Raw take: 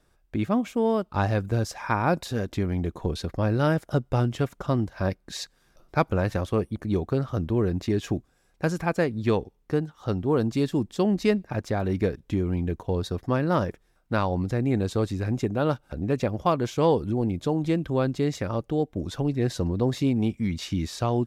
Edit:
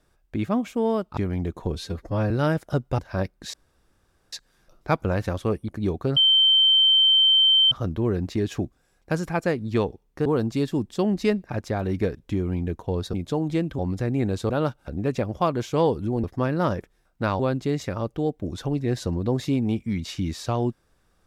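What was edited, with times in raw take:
1.17–2.56 cut
3.14–3.51 stretch 1.5×
4.19–4.85 cut
5.4 insert room tone 0.79 s
7.24 add tone 3110 Hz -14 dBFS 1.55 s
9.78–10.26 cut
13.14–14.3 swap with 17.28–17.93
15.01–15.54 cut

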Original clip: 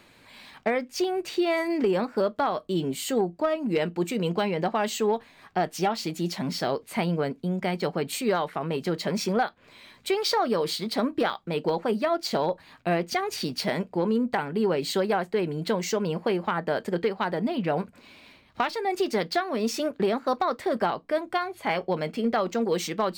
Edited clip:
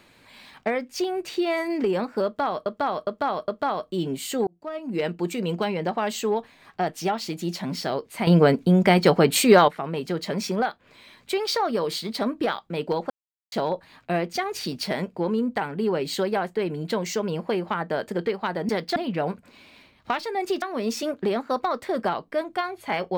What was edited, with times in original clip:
2.25–2.66 loop, 4 plays
3.24–3.83 fade in
7.04–8.45 gain +10.5 dB
11.87–12.29 mute
19.12–19.39 move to 17.46

